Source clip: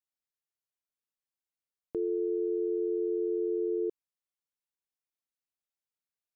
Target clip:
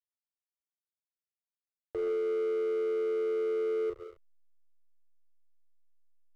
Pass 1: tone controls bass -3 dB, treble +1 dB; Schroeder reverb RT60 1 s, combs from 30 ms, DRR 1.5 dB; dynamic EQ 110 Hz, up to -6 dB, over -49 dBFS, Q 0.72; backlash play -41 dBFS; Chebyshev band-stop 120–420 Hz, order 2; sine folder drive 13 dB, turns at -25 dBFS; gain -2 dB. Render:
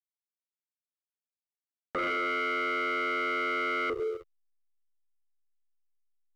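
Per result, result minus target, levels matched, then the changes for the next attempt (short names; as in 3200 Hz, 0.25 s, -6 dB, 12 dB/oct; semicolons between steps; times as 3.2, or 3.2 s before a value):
sine folder: distortion +26 dB; backlash: distortion -6 dB
change: sine folder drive 2 dB, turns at -25 dBFS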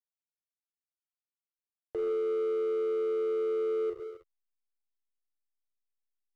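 backlash: distortion -6 dB
change: backlash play -34.5 dBFS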